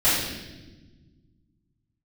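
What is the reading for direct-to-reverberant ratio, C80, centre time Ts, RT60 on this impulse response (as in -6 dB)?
-14.0 dB, 3.0 dB, 74 ms, 1.2 s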